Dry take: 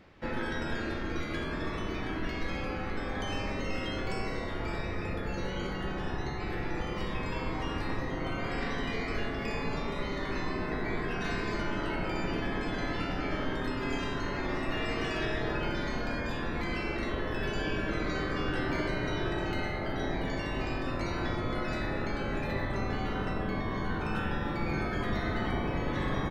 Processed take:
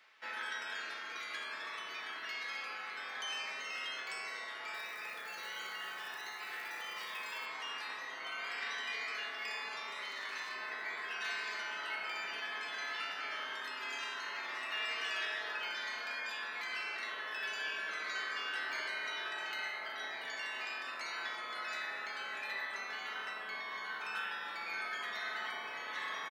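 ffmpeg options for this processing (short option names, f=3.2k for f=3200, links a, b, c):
-filter_complex "[0:a]asettb=1/sr,asplit=3[a][b][c];[a]atrim=end=4.744[d];[b]atrim=start=4.74:end=7.46,asetpts=PTS-STARTPTS,afade=t=in:d=0.004:c=qsin,afade=t=out:st=2.716:d=0.004:c=qsin,acrusher=bits=7:mode=log:mix=0:aa=0.000001[e];[c]atrim=start=7.456[f];[d][e]acrossfade=d=0.004:c1=hsin:c2=qsin[g];[g][f]acrossfade=d=0.004:c1=qsin:c2=hsin,asettb=1/sr,asplit=3[h][i][j];[h]atrim=end=10.024[k];[i]atrim=start=10.02:end=10.55,asetpts=PTS-STARTPTS,afade=t=in:d=0.004:c=qsin,afade=t=out:st=0.526:d=0.004:c=qsin,asoftclip=type=hard:threshold=-28.5dB[l];[j]atrim=start=10.546[m];[k][l]acrossfade=d=0.004:c1=hsin:c2=qsin[n];[n][m]acrossfade=d=0.004:c1=qsin:c2=hsin,highpass=1.4k,aecho=1:1:4.6:0.31"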